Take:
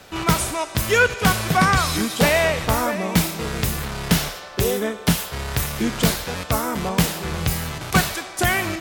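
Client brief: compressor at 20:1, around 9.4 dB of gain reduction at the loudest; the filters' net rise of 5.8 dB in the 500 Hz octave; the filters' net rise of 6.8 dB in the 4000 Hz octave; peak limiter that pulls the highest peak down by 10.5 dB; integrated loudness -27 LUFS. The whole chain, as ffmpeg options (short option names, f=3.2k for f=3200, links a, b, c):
-af "equalizer=f=500:t=o:g=7,equalizer=f=4k:t=o:g=8.5,acompressor=threshold=-18dB:ratio=20,volume=-2.5dB,alimiter=limit=-16.5dB:level=0:latency=1"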